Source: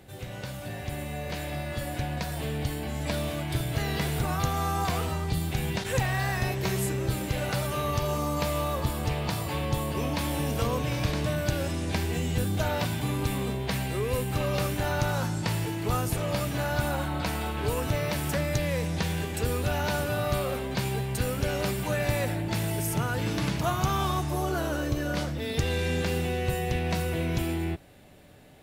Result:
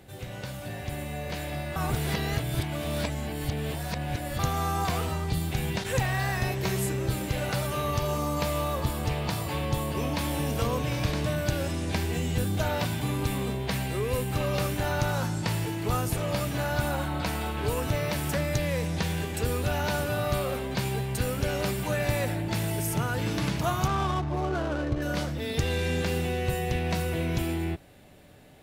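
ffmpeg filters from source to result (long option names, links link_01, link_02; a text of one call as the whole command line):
ffmpeg -i in.wav -filter_complex "[0:a]asettb=1/sr,asplit=3[link_01][link_02][link_03];[link_01]atrim=end=23.874[link_04];[link_02]atrim=start=23.87:end=25.02,asetpts=PTS-STARTPTS,afade=type=in:duration=0.004:curve=qsin,afade=type=out:start_time=1.146:duration=0.004:curve=qsin,adynamicsmooth=sensitivity=6.5:basefreq=610[link_05];[link_03]atrim=start=25.016[link_06];[link_04][link_05]acrossfade=duration=0.004:curve1=hsin:curve2=qsin[link_07];[link_07][link_06]acrossfade=duration=0.004:curve1=qsin:curve2=hsin,asplit=3[link_08][link_09][link_10];[link_08]atrim=end=1.762[link_11];[link_09]atrim=start=1.758:end=4.392,asetpts=PTS-STARTPTS,areverse[link_12];[link_10]atrim=start=4.388[link_13];[link_11][link_12]acrossfade=duration=0.004:curve1=hsin:curve2=hsin[link_14];[link_14][link_13]acrossfade=duration=0.004:curve1=hsin:curve2=hsin" out.wav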